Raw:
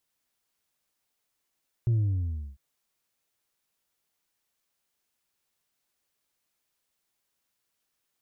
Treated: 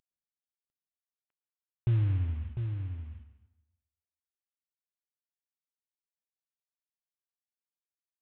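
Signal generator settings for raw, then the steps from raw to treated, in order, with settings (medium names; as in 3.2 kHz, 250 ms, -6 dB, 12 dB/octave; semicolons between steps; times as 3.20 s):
sub drop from 120 Hz, over 0.70 s, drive 2.5 dB, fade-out 0.67 s, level -21 dB
CVSD coder 16 kbps; on a send: delay 700 ms -7.5 dB; on the sum: plate-style reverb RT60 0.95 s, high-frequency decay 0.85×, pre-delay 100 ms, DRR 11.5 dB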